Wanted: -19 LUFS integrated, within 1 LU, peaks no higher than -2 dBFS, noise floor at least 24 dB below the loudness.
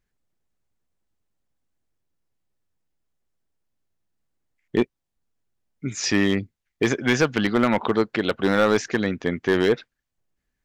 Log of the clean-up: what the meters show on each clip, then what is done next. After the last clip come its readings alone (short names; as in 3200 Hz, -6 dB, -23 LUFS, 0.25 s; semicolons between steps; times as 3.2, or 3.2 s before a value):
clipped 0.3%; flat tops at -11.0 dBFS; loudness -22.5 LUFS; peak -11.0 dBFS; loudness target -19.0 LUFS
-> clip repair -11 dBFS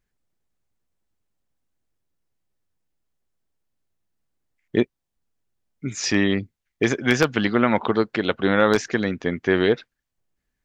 clipped 0.0%; loudness -22.0 LUFS; peak -2.0 dBFS; loudness target -19.0 LUFS
-> gain +3 dB; limiter -2 dBFS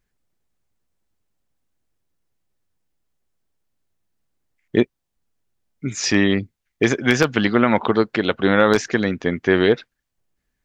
loudness -19.0 LUFS; peak -2.0 dBFS; noise floor -78 dBFS